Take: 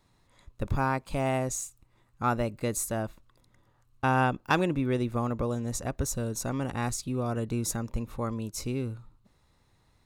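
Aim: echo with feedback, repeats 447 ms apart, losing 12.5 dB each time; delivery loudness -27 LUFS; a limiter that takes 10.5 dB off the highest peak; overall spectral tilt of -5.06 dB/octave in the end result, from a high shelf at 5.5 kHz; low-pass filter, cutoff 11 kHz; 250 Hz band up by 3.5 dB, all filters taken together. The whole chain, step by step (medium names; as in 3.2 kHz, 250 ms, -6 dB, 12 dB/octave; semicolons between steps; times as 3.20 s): low-pass 11 kHz; peaking EQ 250 Hz +4 dB; treble shelf 5.5 kHz +4.5 dB; peak limiter -21.5 dBFS; feedback delay 447 ms, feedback 24%, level -12.5 dB; trim +5 dB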